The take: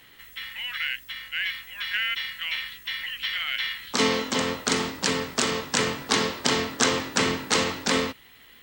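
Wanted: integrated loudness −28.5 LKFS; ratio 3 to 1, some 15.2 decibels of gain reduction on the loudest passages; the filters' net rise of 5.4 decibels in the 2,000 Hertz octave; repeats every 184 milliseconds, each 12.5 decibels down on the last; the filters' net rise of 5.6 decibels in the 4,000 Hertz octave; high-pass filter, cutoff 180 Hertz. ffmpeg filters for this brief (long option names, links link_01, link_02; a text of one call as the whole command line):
ffmpeg -i in.wav -af "highpass=180,equalizer=frequency=2000:width_type=o:gain=5,equalizer=frequency=4000:width_type=o:gain=5.5,acompressor=threshold=-37dB:ratio=3,aecho=1:1:184|368|552:0.237|0.0569|0.0137,volume=6dB" out.wav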